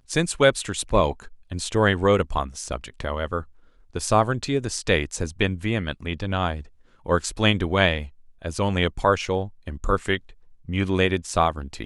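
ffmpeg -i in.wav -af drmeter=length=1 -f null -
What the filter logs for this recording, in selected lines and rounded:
Channel 1: DR: 13.9
Overall DR: 13.9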